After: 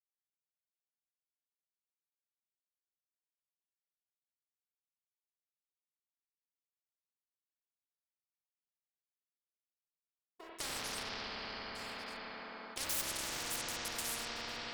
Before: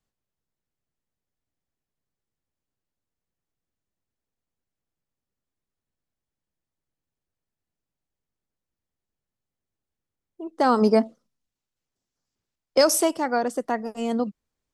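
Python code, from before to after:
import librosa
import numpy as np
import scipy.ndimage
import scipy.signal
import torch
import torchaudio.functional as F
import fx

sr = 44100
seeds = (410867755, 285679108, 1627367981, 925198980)

p1 = fx.comb_fb(x, sr, f0_hz=860.0, decay_s=0.36, harmonics='all', damping=0.0, mix_pct=70)
p2 = p1 + fx.echo_single(p1, sr, ms=1149, db=-21.5, dry=0)
p3 = np.sign(p2) * np.maximum(np.abs(p2) - 10.0 ** (-56.0 / 20.0), 0.0)
p4 = fx.level_steps(p3, sr, step_db=21)
p5 = fx.bass_treble(p4, sr, bass_db=-14, treble_db=9)
p6 = fx.notch(p5, sr, hz=6100.0, q=13.0)
p7 = fx.rev_spring(p6, sr, rt60_s=3.5, pass_ms=(30, 45), chirp_ms=40, drr_db=-9.5)
p8 = fx.tube_stage(p7, sr, drive_db=31.0, bias=0.6)
p9 = fx.spectral_comp(p8, sr, ratio=10.0)
y = p9 * librosa.db_to_amplitude(5.0)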